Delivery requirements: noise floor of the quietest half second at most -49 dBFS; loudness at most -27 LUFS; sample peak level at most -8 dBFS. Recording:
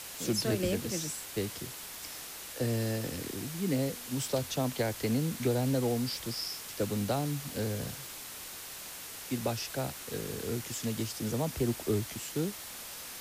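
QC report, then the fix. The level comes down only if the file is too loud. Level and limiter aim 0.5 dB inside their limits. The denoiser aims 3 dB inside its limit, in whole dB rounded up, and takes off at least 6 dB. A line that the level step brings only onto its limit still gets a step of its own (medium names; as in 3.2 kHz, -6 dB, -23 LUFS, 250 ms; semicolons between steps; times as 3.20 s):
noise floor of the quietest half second -44 dBFS: fail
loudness -34.0 LUFS: pass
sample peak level -17.5 dBFS: pass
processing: noise reduction 8 dB, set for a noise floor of -44 dBFS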